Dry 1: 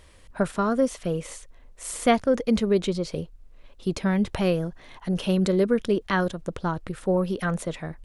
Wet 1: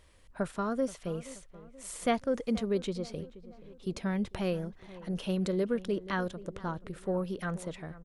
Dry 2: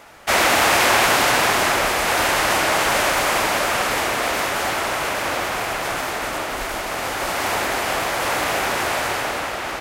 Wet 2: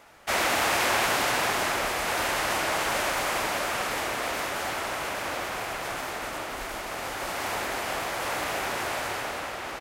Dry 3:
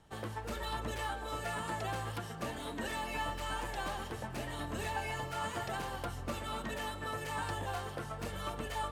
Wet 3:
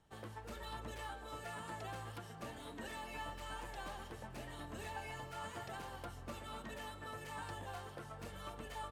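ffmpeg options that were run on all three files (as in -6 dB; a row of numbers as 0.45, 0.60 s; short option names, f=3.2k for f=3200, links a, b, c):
-filter_complex "[0:a]asplit=2[a][b];[b]adelay=478,lowpass=f=1.7k:p=1,volume=-17dB,asplit=2[c][d];[d]adelay=478,lowpass=f=1.7k:p=1,volume=0.51,asplit=2[e][f];[f]adelay=478,lowpass=f=1.7k:p=1,volume=0.51,asplit=2[g][h];[h]adelay=478,lowpass=f=1.7k:p=1,volume=0.51[i];[a][c][e][g][i]amix=inputs=5:normalize=0,volume=-8.5dB"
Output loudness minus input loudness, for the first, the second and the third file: -8.5, -8.5, -8.5 LU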